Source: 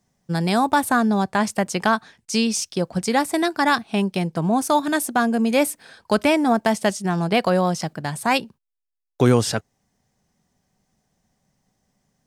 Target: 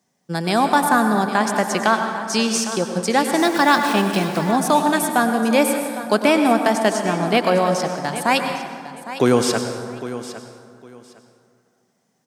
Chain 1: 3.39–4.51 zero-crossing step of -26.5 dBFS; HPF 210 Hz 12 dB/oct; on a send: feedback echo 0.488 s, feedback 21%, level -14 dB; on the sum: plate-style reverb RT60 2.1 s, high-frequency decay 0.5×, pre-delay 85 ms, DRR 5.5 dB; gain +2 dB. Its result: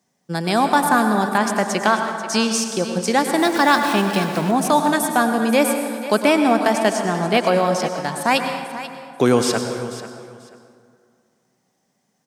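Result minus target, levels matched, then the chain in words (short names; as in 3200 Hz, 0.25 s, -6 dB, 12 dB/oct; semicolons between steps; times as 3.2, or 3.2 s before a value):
echo 0.319 s early
3.39–4.51 zero-crossing step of -26.5 dBFS; HPF 210 Hz 12 dB/oct; on a send: feedback echo 0.807 s, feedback 21%, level -14 dB; on the sum: plate-style reverb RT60 2.1 s, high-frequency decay 0.5×, pre-delay 85 ms, DRR 5.5 dB; gain +2 dB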